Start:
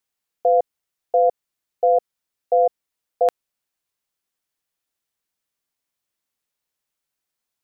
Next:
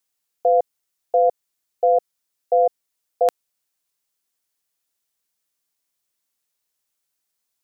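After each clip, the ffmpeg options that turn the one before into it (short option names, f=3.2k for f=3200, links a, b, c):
-af "bass=f=250:g=-2,treble=f=4k:g=6"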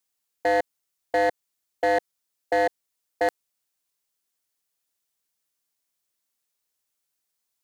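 -af "aeval=exprs='0.211*(abs(mod(val(0)/0.211+3,4)-2)-1)':c=same,volume=-2dB"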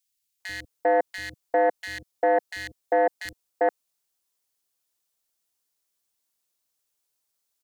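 -filter_complex "[0:a]acrossover=split=190|1900[a][b][c];[a]adelay=40[d];[b]adelay=400[e];[d][e][c]amix=inputs=3:normalize=0,volume=1.5dB"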